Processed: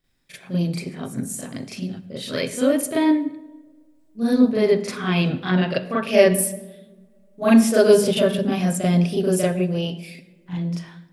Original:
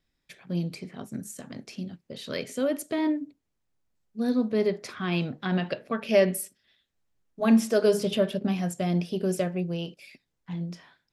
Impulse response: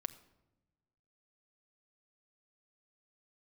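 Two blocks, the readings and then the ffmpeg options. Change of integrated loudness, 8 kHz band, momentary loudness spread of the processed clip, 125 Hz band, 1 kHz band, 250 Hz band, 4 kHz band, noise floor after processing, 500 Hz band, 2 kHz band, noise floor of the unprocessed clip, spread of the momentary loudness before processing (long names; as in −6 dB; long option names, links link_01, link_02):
+7.0 dB, +11.0 dB, 16 LU, +7.5 dB, +7.0 dB, +7.5 dB, +7.5 dB, −55 dBFS, +7.5 dB, +7.5 dB, −79 dBFS, 17 LU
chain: -filter_complex "[0:a]aexciter=amount=1.4:drive=6.1:freq=8300,asplit=2[link_01][link_02];[1:a]atrim=start_sample=2205,asetrate=32634,aresample=44100,adelay=39[link_03];[link_02][link_03]afir=irnorm=-1:irlink=0,volume=7dB[link_04];[link_01][link_04]amix=inputs=2:normalize=0"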